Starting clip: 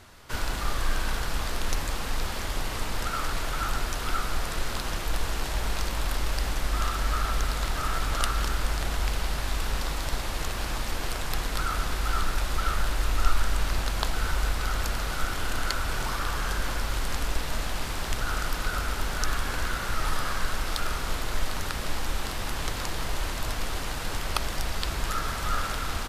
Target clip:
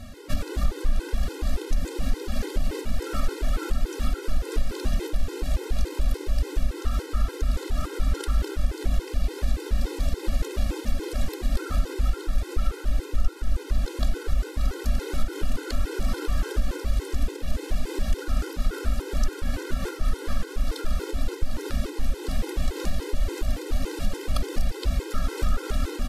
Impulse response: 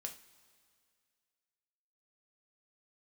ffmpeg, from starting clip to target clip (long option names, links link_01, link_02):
-af "lowshelf=frequency=590:width_type=q:width=1.5:gain=11.5,acompressor=threshold=-24dB:ratio=4,equalizer=frequency=120:width=1.7:gain=-10.5,afftfilt=real='re*gt(sin(2*PI*3.5*pts/sr)*(1-2*mod(floor(b*sr/1024/270),2)),0)':imag='im*gt(sin(2*PI*3.5*pts/sr)*(1-2*mod(floor(b*sr/1024/270),2)),0)':win_size=1024:overlap=0.75,volume=6dB"